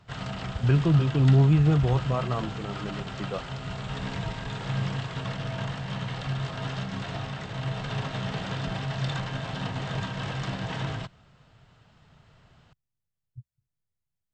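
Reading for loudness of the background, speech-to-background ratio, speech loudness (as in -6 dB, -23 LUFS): -33.0 LUFS, 10.0 dB, -23.0 LUFS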